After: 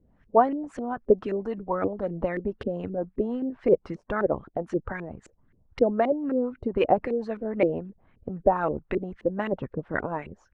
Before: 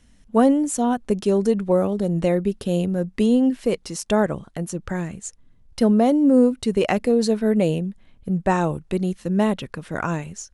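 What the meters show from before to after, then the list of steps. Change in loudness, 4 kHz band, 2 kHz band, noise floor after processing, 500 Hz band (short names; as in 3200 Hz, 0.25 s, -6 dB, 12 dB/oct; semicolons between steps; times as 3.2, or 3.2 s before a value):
-6.0 dB, under -10 dB, -3.5 dB, -64 dBFS, -3.5 dB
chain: harmonic-percussive split harmonic -14 dB; LFO low-pass saw up 3.8 Hz 360–2200 Hz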